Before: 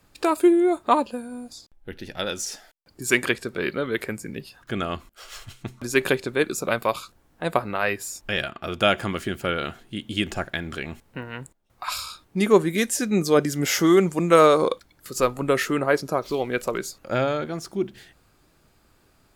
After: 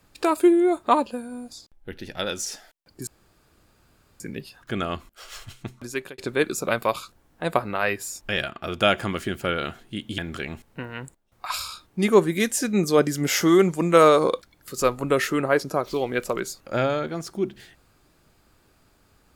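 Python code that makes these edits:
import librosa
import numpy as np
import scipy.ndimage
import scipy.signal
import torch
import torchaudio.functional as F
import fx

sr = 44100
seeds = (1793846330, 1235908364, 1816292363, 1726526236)

y = fx.edit(x, sr, fx.room_tone_fill(start_s=3.07, length_s=1.13),
    fx.fade_out_span(start_s=5.59, length_s=0.59),
    fx.cut(start_s=10.18, length_s=0.38), tone=tone)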